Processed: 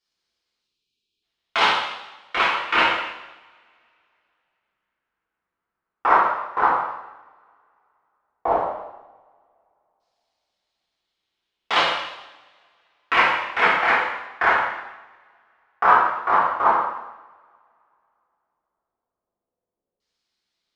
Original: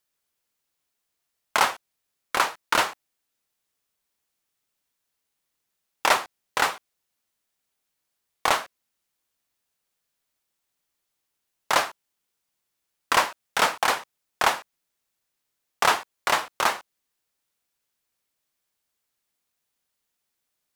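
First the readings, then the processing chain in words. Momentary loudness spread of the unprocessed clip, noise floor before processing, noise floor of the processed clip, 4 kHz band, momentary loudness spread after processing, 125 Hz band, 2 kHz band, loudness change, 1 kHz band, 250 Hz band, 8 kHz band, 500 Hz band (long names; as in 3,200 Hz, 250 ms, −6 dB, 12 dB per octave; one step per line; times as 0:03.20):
8 LU, −80 dBFS, −84 dBFS, +1.5 dB, 14 LU, +2.0 dB, +5.0 dB, +4.0 dB, +6.0 dB, +4.5 dB, below −15 dB, +4.0 dB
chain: auto-filter low-pass saw down 0.1 Hz 520–4,800 Hz
time-frequency box erased 0:00.60–0:01.23, 490–2,300 Hz
coupled-rooms reverb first 0.94 s, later 2.9 s, from −27 dB, DRR −8.5 dB
level −7 dB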